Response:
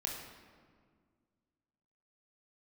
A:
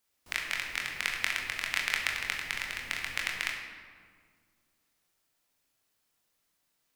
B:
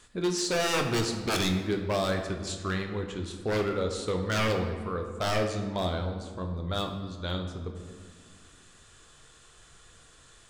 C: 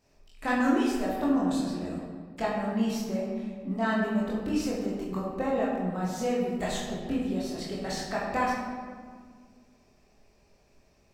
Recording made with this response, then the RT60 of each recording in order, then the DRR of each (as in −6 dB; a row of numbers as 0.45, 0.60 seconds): A; 1.9, 1.9, 1.9 seconds; −1.0, 3.5, −6.0 decibels